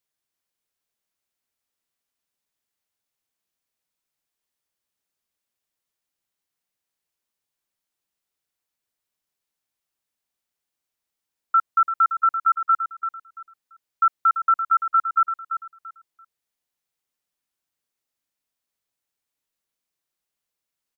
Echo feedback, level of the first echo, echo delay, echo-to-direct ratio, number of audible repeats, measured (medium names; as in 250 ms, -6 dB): 24%, -9.0 dB, 339 ms, -8.5 dB, 3